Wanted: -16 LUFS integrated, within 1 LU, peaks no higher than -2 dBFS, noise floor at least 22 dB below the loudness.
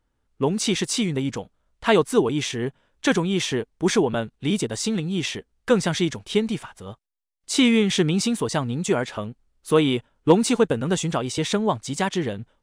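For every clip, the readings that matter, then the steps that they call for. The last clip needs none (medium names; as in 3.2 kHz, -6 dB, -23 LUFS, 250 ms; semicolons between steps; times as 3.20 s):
loudness -23.0 LUFS; peak level -5.0 dBFS; loudness target -16.0 LUFS
-> trim +7 dB; peak limiter -2 dBFS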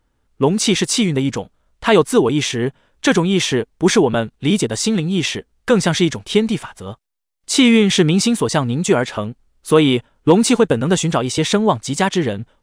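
loudness -16.5 LUFS; peak level -2.0 dBFS; noise floor -66 dBFS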